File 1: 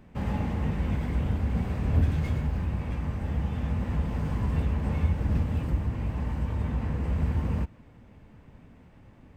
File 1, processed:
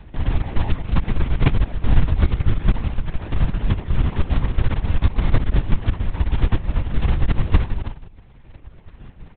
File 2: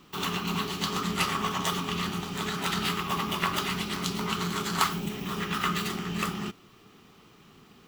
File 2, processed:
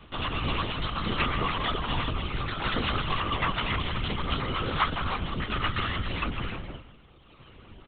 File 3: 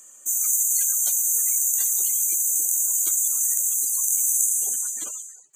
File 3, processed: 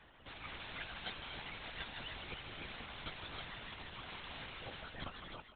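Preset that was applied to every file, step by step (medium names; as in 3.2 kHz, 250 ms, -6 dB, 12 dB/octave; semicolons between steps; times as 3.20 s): in parallel at -1 dB: compression 6:1, threshold -37 dBFS; on the sum: resonant low shelf 110 Hz +10.5 dB, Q 1.5; on a send: feedback delay 157 ms, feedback 36%, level -6 dB; on the sum: gated-style reverb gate 340 ms rising, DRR 0.5 dB; reverb removal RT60 1.7 s; short-mantissa float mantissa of 2-bit; LPC vocoder at 8 kHz whisper; trim -1 dB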